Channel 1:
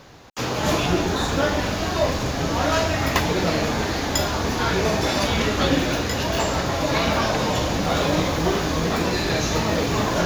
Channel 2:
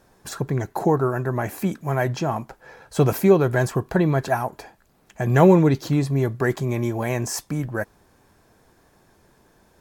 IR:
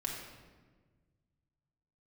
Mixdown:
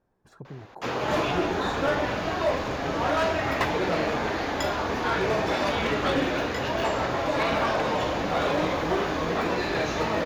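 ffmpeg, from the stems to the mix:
-filter_complex "[0:a]bass=f=250:g=-9,treble=f=4000:g=-14,adelay=450,volume=0.841[s0];[1:a]lowpass=f=1100:p=1,acompressor=threshold=0.0794:ratio=6,volume=0.188[s1];[s0][s1]amix=inputs=2:normalize=0,volume=7.94,asoftclip=hard,volume=0.126"

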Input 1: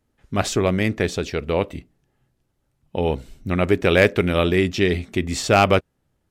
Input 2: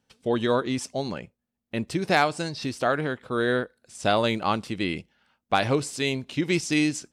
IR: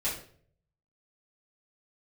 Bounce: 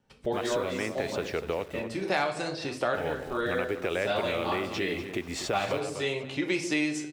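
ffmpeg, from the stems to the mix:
-filter_complex "[0:a]acompressor=threshold=0.0447:ratio=2,alimiter=limit=0.158:level=0:latency=1:release=147,acrusher=bits=7:mix=0:aa=0.000001,volume=1.41,asplit=3[s0][s1][s2];[s1]volume=0.237[s3];[1:a]volume=1.19,asplit=3[s4][s5][s6];[s5]volume=0.422[s7];[s6]volume=0.112[s8];[s2]apad=whole_len=314161[s9];[s4][s9]sidechaincompress=threshold=0.0141:ratio=8:attack=16:release=435[s10];[2:a]atrim=start_sample=2205[s11];[s7][s11]afir=irnorm=-1:irlink=0[s12];[s3][s8]amix=inputs=2:normalize=0,aecho=0:1:245|490|735|980:1|0.28|0.0784|0.022[s13];[s0][s10][s12][s13]amix=inputs=4:normalize=0,highshelf=f=2500:g=-10.5,acrossover=split=370|2000[s14][s15][s16];[s14]acompressor=threshold=0.00794:ratio=4[s17];[s15]acompressor=threshold=0.0398:ratio=4[s18];[s16]acompressor=threshold=0.0282:ratio=4[s19];[s17][s18][s19]amix=inputs=3:normalize=0"

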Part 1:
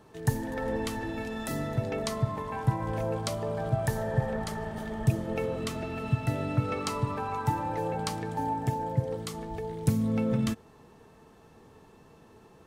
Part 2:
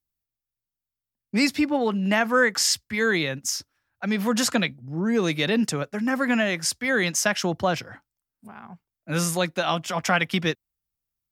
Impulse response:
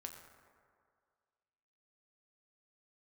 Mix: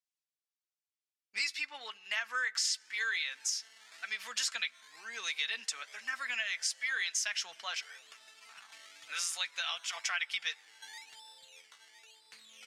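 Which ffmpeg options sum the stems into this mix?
-filter_complex "[0:a]acrusher=samples=14:mix=1:aa=0.000001:lfo=1:lforange=8.4:lforate=0.99,adelay=2450,volume=0.473[s0];[1:a]lowshelf=f=390:g=-5.5,aecho=1:1:4.5:0.33,volume=1.06,asplit=3[s1][s2][s3];[s2]volume=0.178[s4];[s3]apad=whole_len=666704[s5];[s0][s5]sidechaincompress=threshold=0.0447:ratio=8:attack=16:release=430[s6];[2:a]atrim=start_sample=2205[s7];[s4][s7]afir=irnorm=-1:irlink=0[s8];[s6][s1][s8]amix=inputs=3:normalize=0,asuperpass=centerf=4100:order=4:qfactor=0.61,flanger=delay=2.6:depth=1.7:regen=-61:speed=1:shape=sinusoidal,acompressor=threshold=0.0282:ratio=3"

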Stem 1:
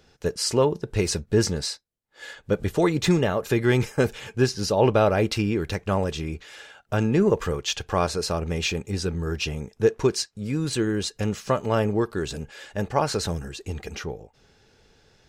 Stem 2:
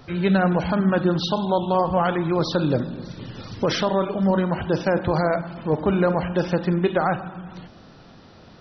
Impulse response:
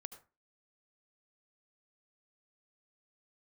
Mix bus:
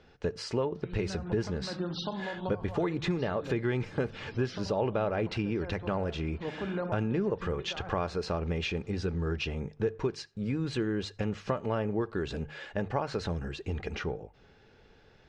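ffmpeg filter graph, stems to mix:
-filter_complex "[0:a]acompressor=threshold=0.0398:ratio=4,lowpass=3100,volume=0.891,asplit=3[s0][s1][s2];[s1]volume=0.266[s3];[1:a]acompressor=threshold=0.0447:ratio=2,adelay=750,volume=0.422[s4];[s2]apad=whole_len=412466[s5];[s4][s5]sidechaincompress=threshold=0.00794:ratio=8:attack=7.1:release=156[s6];[2:a]atrim=start_sample=2205[s7];[s3][s7]afir=irnorm=-1:irlink=0[s8];[s0][s6][s8]amix=inputs=3:normalize=0,bandreject=f=50:t=h:w=6,bandreject=f=100:t=h:w=6,bandreject=f=150:t=h:w=6"

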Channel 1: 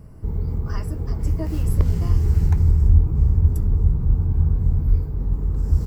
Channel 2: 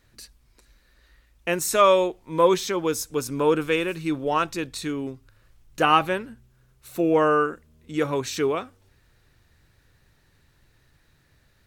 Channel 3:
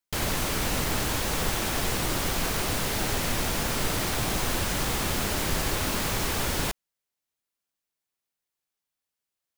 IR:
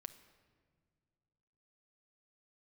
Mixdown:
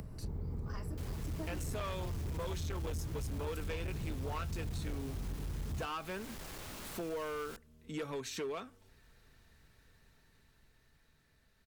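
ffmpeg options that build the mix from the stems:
-filter_complex "[0:a]acompressor=mode=upward:threshold=0.0158:ratio=2.5,volume=0.596[s0];[1:a]dynaudnorm=f=430:g=11:m=3.55,aecho=1:1:4.5:0.38,volume=0.335[s1];[2:a]asoftclip=type=tanh:threshold=0.0501,adelay=850,volume=0.188[s2];[s0][s1][s2]amix=inputs=3:normalize=0,acrossover=split=110|2100[s3][s4][s5];[s3]acompressor=threshold=0.0251:ratio=4[s6];[s4]acompressor=threshold=0.0355:ratio=4[s7];[s5]acompressor=threshold=0.0126:ratio=4[s8];[s6][s7][s8]amix=inputs=3:normalize=0,asoftclip=type=hard:threshold=0.0422,acompressor=threshold=0.00794:ratio=2"

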